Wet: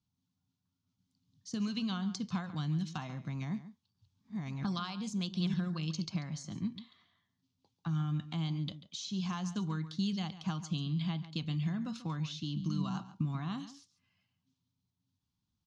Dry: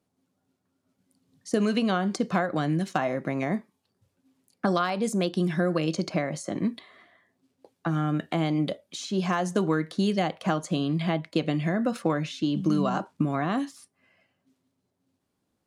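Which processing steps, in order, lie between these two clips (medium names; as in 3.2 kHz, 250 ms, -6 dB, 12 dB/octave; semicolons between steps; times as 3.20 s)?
3.26–5.54 s: chunks repeated in reverse 693 ms, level -1.5 dB; FFT filter 110 Hz 0 dB, 220 Hz -9 dB, 350 Hz -21 dB, 590 Hz -28 dB, 920 Hz -11 dB, 1.9 kHz -18 dB, 3.4 kHz -4 dB, 6.3 kHz -5 dB, 9.9 kHz -25 dB; echo from a far wall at 24 m, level -14 dB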